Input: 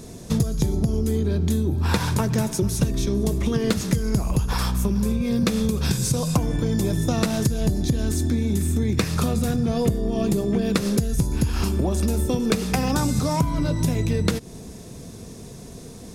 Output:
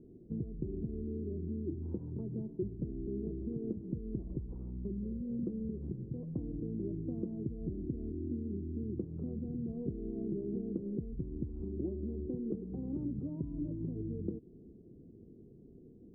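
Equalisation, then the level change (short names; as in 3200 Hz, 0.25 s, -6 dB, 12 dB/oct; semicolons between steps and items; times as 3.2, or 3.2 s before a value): ladder low-pass 390 Hz, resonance 60%; -8.5 dB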